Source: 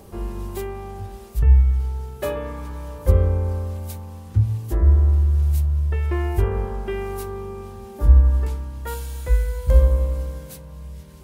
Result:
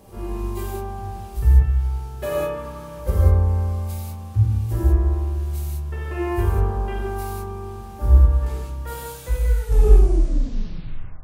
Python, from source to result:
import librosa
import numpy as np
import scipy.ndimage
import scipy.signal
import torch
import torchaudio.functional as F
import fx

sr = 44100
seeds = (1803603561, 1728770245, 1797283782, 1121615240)

y = fx.tape_stop_end(x, sr, length_s=1.8)
y = fx.rev_gated(y, sr, seeds[0], gate_ms=220, shape='flat', drr_db=-6.5)
y = y * librosa.db_to_amplitude(-6.0)